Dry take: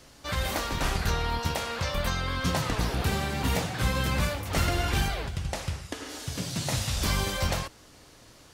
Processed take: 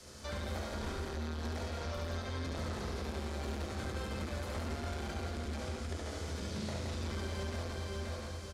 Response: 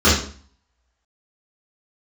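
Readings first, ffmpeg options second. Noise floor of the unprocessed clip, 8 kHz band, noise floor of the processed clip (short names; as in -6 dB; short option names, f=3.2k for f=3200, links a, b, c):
-54 dBFS, -14.0 dB, -43 dBFS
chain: -filter_complex "[0:a]lowpass=9.6k,acrossover=split=4300[a][b];[b]acompressor=threshold=-44dB:ratio=4:attack=1:release=60[c];[a][c]amix=inputs=2:normalize=0,equalizer=f=1.8k:w=0.35:g=-6,aecho=1:1:528|1056|1584:0.376|0.0977|0.0254,asplit=2[d][e];[1:a]atrim=start_sample=2205,atrim=end_sample=3969[f];[e][f]afir=irnorm=-1:irlink=0,volume=-26dB[g];[d][g]amix=inputs=2:normalize=0,asoftclip=type=tanh:threshold=-22.5dB,bass=f=250:g=-7,treble=f=4k:g=4,bandreject=f=2.8k:w=18,asplit=2[h][i];[i]aecho=0:1:69.97|169.1:0.708|0.631[j];[h][j]amix=inputs=2:normalize=0,acrossover=split=210|980|3300[k][l][m][n];[k]acompressor=threshold=-42dB:ratio=4[o];[l]acompressor=threshold=-44dB:ratio=4[p];[m]acompressor=threshold=-51dB:ratio=4[q];[n]acompressor=threshold=-55dB:ratio=4[r];[o][p][q][r]amix=inputs=4:normalize=0,volume=1dB"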